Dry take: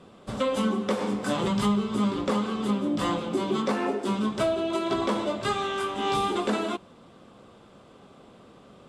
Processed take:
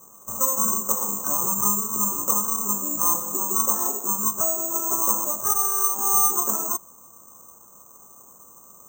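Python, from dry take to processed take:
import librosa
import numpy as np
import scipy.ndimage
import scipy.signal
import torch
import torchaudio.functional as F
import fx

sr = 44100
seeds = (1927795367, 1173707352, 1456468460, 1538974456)

y = fx.ladder_lowpass(x, sr, hz=1200.0, resonance_pct=75)
y = (np.kron(scipy.signal.resample_poly(y, 1, 6), np.eye(6)[0]) * 6)[:len(y)]
y = y * librosa.db_to_amplitude(2.5)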